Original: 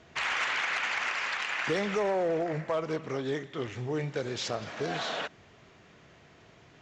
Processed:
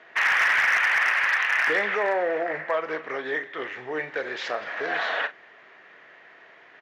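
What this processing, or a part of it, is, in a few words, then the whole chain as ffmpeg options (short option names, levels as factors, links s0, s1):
megaphone: -filter_complex "[0:a]highpass=500,lowpass=2800,equalizer=f=1800:t=o:w=0.48:g=10,asoftclip=type=hard:threshold=0.0891,asplit=2[s0][s1];[s1]adelay=39,volume=0.211[s2];[s0][s2]amix=inputs=2:normalize=0,volume=1.88"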